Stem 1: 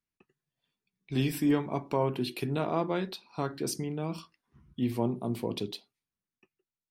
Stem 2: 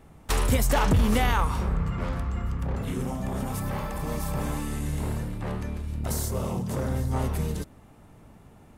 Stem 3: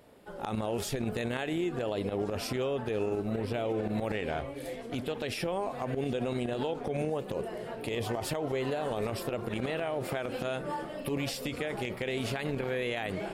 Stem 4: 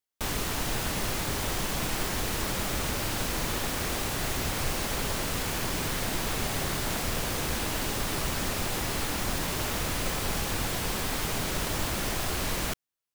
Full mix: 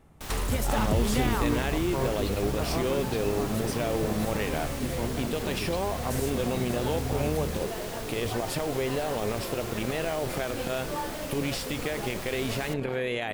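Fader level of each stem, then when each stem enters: -4.5, -5.5, +2.5, -8.5 dB; 0.00, 0.00, 0.25, 0.00 s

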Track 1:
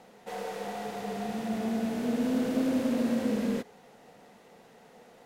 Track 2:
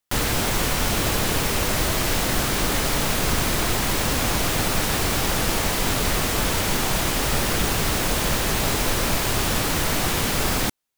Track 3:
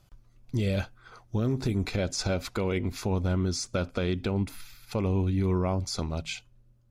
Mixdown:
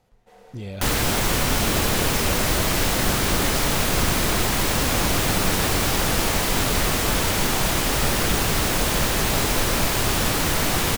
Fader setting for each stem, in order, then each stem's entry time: -13.5, +1.0, -6.5 dB; 0.00, 0.70, 0.00 s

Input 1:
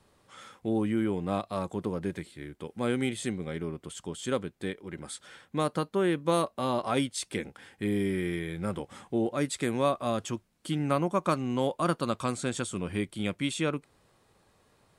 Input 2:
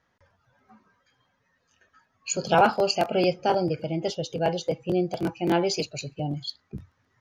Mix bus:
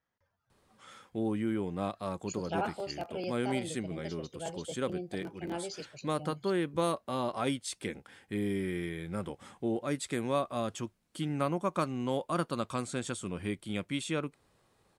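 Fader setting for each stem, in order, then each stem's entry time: -4.0, -15.0 dB; 0.50, 0.00 s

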